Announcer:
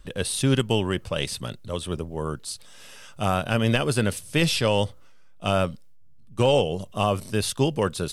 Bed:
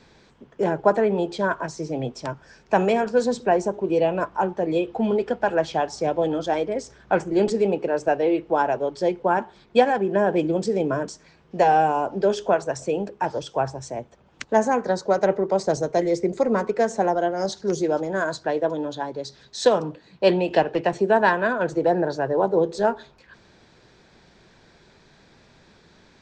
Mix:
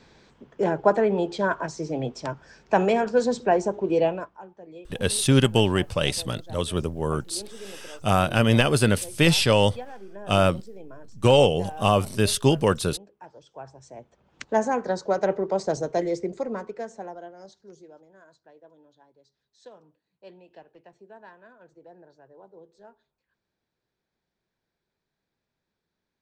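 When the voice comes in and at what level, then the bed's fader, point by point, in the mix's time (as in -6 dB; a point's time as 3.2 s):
4.85 s, +3.0 dB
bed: 4.07 s -1 dB
4.41 s -21 dB
13.37 s -21 dB
14.46 s -3.5 dB
16.02 s -3.5 dB
18.14 s -29.5 dB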